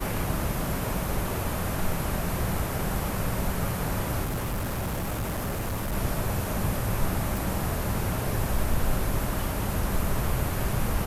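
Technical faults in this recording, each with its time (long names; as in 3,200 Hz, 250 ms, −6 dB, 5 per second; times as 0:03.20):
0:04.24–0:05.94: clipping −26 dBFS
0:07.37: click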